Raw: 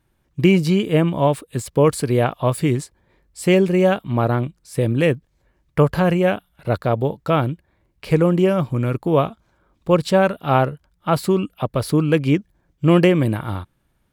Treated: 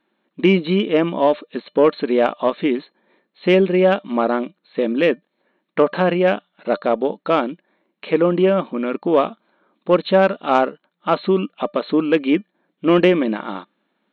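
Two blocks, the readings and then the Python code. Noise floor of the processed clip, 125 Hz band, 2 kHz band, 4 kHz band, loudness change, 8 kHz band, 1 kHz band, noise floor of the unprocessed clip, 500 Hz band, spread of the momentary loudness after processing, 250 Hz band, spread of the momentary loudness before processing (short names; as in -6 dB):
-74 dBFS, -9.5 dB, +1.5 dB, +1.5 dB, +0.5 dB, under -20 dB, +1.5 dB, -67 dBFS, +2.0 dB, 10 LU, 0.0 dB, 10 LU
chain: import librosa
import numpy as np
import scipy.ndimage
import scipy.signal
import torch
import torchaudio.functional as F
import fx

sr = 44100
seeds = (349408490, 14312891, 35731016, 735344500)

y = fx.brickwall_bandpass(x, sr, low_hz=180.0, high_hz=4300.0)
y = fx.comb_fb(y, sr, f0_hz=600.0, decay_s=0.16, harmonics='all', damping=0.0, mix_pct=40)
y = fx.cheby_harmonics(y, sr, harmonics=(5,), levels_db=(-28,), full_scale_db=-6.5)
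y = y * 10.0 ** (5.0 / 20.0)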